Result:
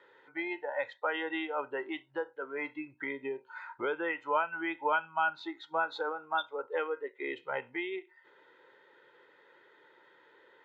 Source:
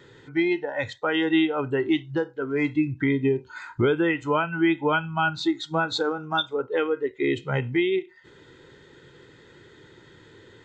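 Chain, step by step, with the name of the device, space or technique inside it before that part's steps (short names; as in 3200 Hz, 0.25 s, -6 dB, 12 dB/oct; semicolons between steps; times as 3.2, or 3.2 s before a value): tin-can telephone (BPF 660–2200 Hz; small resonant body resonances 550/900 Hz, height 6 dB, ringing for 25 ms); gain -5 dB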